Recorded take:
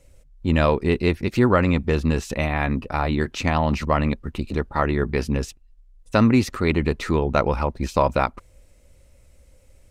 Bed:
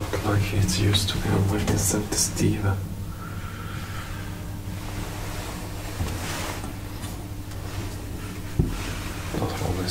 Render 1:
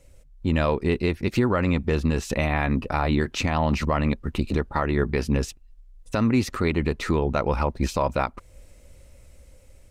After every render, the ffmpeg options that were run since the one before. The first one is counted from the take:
-af "dynaudnorm=f=580:g=5:m=11.5dB,alimiter=limit=-11.5dB:level=0:latency=1:release=351"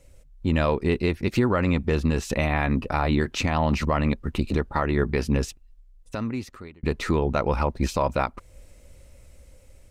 -filter_complex "[0:a]asplit=2[a][b];[a]atrim=end=6.83,asetpts=PTS-STARTPTS,afade=t=out:st=5.43:d=1.4[c];[b]atrim=start=6.83,asetpts=PTS-STARTPTS,afade=t=in:d=0.004:c=hsin[d];[c][d]concat=n=2:v=0:a=1"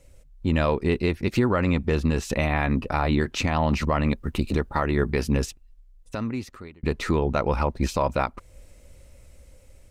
-filter_complex "[0:a]asettb=1/sr,asplit=3[a][b][c];[a]atrim=end=4.054[d];[b]atrim=start=4.05:end=5.46,asetpts=PTS-STARTPTS,afade=t=in:d=0.004:c=qsin,afade=t=out:st=1.406:d=0.004:c=qsin,highshelf=f=9.4k:g=8[e];[c]atrim=start=5.456[f];[d][e]acrossfade=d=0.004:c1=hsin:c2=qsin[g];[g][f]acrossfade=d=0.004:c1=qsin:c2=hsin"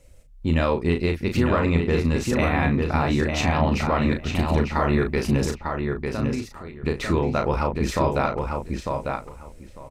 -filter_complex "[0:a]asplit=2[a][b];[b]adelay=36,volume=-6dB[c];[a][c]amix=inputs=2:normalize=0,asplit=2[d][e];[e]adelay=899,lowpass=f=3.7k:p=1,volume=-4dB,asplit=2[f][g];[g]adelay=899,lowpass=f=3.7k:p=1,volume=0.17,asplit=2[h][i];[i]adelay=899,lowpass=f=3.7k:p=1,volume=0.17[j];[d][f][h][j]amix=inputs=4:normalize=0"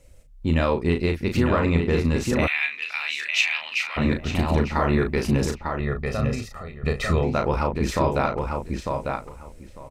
-filter_complex "[0:a]asplit=3[a][b][c];[a]afade=t=out:st=2.46:d=0.02[d];[b]highpass=f=2.5k:t=q:w=3.2,afade=t=in:st=2.46:d=0.02,afade=t=out:st=3.96:d=0.02[e];[c]afade=t=in:st=3.96:d=0.02[f];[d][e][f]amix=inputs=3:normalize=0,asettb=1/sr,asplit=3[g][h][i];[g]atrim=end=5.804[j];[h]atrim=start=5.8:end=7.24,asetpts=PTS-STARTPTS,afade=t=in:d=0.004:c=qsin,afade=t=out:st=1.436:d=0.004:c=qsin,aecho=1:1:1.6:0.68,atrim=end_sample=63504[k];[i]atrim=start=7.236[l];[j][k]acrossfade=d=0.004:c1=hsin:c2=qsin[m];[m][l]acrossfade=d=0.004:c1=qsin:c2=hsin"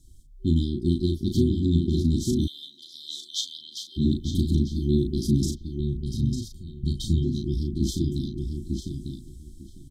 -af "afftfilt=real='re*(1-between(b*sr/4096,380,3100))':imag='im*(1-between(b*sr/4096,380,3100))':win_size=4096:overlap=0.75"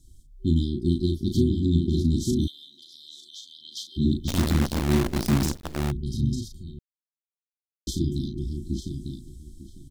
-filter_complex "[0:a]asettb=1/sr,asplit=3[a][b][c];[a]atrim=end=2.504[d];[b]atrim=start=2.5:end=3.65,asetpts=PTS-STARTPTS,afade=t=in:d=0.004:c=qsin,afade=t=out:st=1.146:d=0.004:c=qsin,acompressor=threshold=-45dB:ratio=2.5:attack=3.2:release=140:knee=1:detection=peak[e];[c]atrim=start=3.646[f];[d][e]acrossfade=d=0.004:c1=hsin:c2=qsin[g];[g][f]acrossfade=d=0.004:c1=qsin:c2=hsin,asplit=3[h][i][j];[h]afade=t=out:st=4.27:d=0.02[k];[i]acrusher=bits=5:dc=4:mix=0:aa=0.000001,afade=t=in:st=4.27:d=0.02,afade=t=out:st=5.9:d=0.02[l];[j]afade=t=in:st=5.9:d=0.02[m];[k][l][m]amix=inputs=3:normalize=0,asplit=3[n][o][p];[n]atrim=end=6.79,asetpts=PTS-STARTPTS,afade=t=out:st=6.786:d=0.004:c=hsin[q];[o]atrim=start=6.79:end=7.87,asetpts=PTS-STARTPTS,volume=0[r];[p]atrim=start=7.87,asetpts=PTS-STARTPTS,afade=t=in:d=0.004:c=hsin[s];[q][r][s]concat=n=3:v=0:a=1"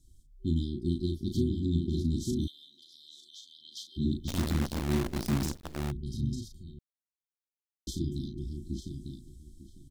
-af "volume=-7dB"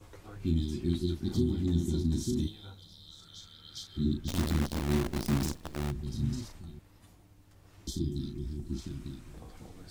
-filter_complex "[1:a]volume=-25dB[a];[0:a][a]amix=inputs=2:normalize=0"

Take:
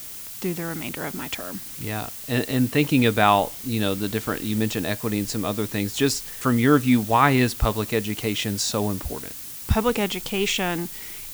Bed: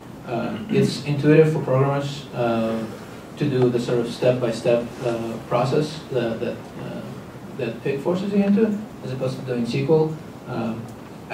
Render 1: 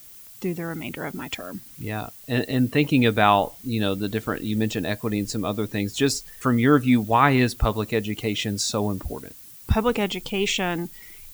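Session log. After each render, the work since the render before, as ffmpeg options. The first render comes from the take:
-af "afftdn=nr=11:nf=-37"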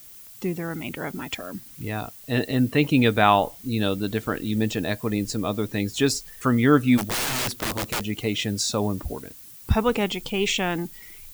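-filter_complex "[0:a]asplit=3[a][b][c];[a]afade=t=out:st=6.97:d=0.02[d];[b]aeval=exprs='(mod(11.2*val(0)+1,2)-1)/11.2':c=same,afade=t=in:st=6.97:d=0.02,afade=t=out:st=8.02:d=0.02[e];[c]afade=t=in:st=8.02:d=0.02[f];[d][e][f]amix=inputs=3:normalize=0"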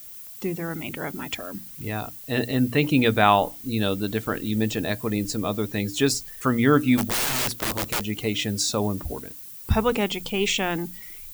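-af "highshelf=f=11k:g=5,bandreject=f=60:t=h:w=6,bandreject=f=120:t=h:w=6,bandreject=f=180:t=h:w=6,bandreject=f=240:t=h:w=6,bandreject=f=300:t=h:w=6"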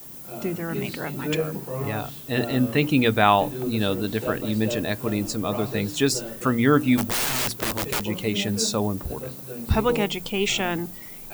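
-filter_complex "[1:a]volume=-12dB[a];[0:a][a]amix=inputs=2:normalize=0"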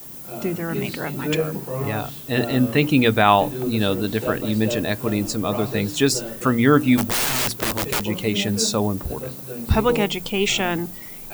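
-af "volume=3dB,alimiter=limit=-2dB:level=0:latency=1"

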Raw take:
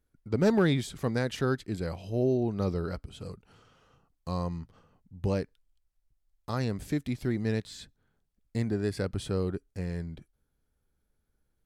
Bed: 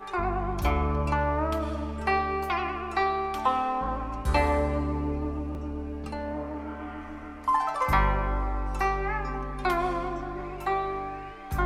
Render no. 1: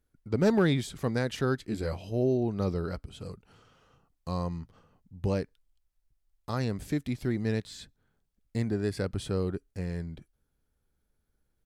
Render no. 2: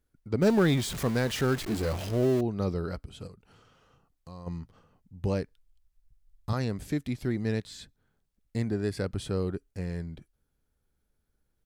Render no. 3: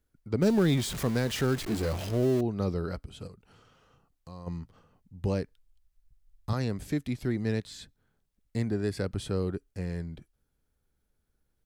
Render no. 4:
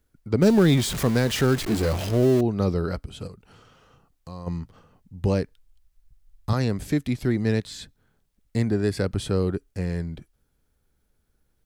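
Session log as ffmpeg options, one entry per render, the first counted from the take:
-filter_complex "[0:a]asplit=3[a][b][c];[a]afade=t=out:st=1.63:d=0.02[d];[b]asplit=2[e][f];[f]adelay=14,volume=-4dB[g];[e][g]amix=inputs=2:normalize=0,afade=t=in:st=1.63:d=0.02,afade=t=out:st=2.1:d=0.02[h];[c]afade=t=in:st=2.1:d=0.02[i];[d][h][i]amix=inputs=3:normalize=0"
-filter_complex "[0:a]asettb=1/sr,asplit=3[a][b][c];[a]atrim=end=0.424[d];[b]atrim=start=0.42:end=2.41,asetpts=PTS-STARTPTS,afade=t=in:d=0.004:c=qsin,afade=t=out:st=1.986:d=0.004:c=qsin,aeval=exprs='val(0)+0.5*0.0237*sgn(val(0))':c=same[e];[c]atrim=start=2.406[f];[d][e]acrossfade=d=0.004:c1=hsin:c2=qsin[g];[g][f]acrossfade=d=0.004:c1=qsin:c2=hsin,asplit=3[h][i][j];[h]afade=t=out:st=3.26:d=0.02[k];[i]acompressor=threshold=-51dB:ratio=2:attack=3.2:release=140:knee=1:detection=peak,afade=t=in:st=3.26:d=0.02,afade=t=out:st=4.46:d=0.02[l];[j]afade=t=in:st=4.46:d=0.02[m];[k][l][m]amix=inputs=3:normalize=0,asettb=1/sr,asplit=3[n][o][p];[n]atrim=end=5.324[q];[o]atrim=start=5.32:end=6.53,asetpts=PTS-STARTPTS,afade=t=in:d=0.004:c=qsin,afade=t=out:st=1.206:d=0.004:c=qsin,asubboost=boost=9:cutoff=190[r];[p]atrim=start=6.526[s];[q][r]acrossfade=d=0.004:c1=hsin:c2=qsin[t];[t][s]acrossfade=d=0.004:c1=qsin:c2=hsin"
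-filter_complex "[0:a]acrossover=split=450|3000[a][b][c];[b]acompressor=threshold=-32dB:ratio=6[d];[a][d][c]amix=inputs=3:normalize=0"
-af "volume=6.5dB"

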